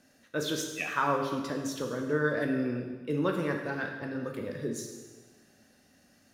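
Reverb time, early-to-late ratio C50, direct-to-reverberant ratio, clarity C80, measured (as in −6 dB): 1.4 s, 5.0 dB, 2.0 dB, 6.5 dB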